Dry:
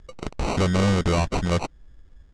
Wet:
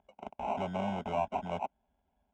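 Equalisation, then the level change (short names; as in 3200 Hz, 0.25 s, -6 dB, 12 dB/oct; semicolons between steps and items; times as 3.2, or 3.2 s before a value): BPF 240–2200 Hz; fixed phaser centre 490 Hz, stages 6; fixed phaser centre 1200 Hz, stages 6; 0.0 dB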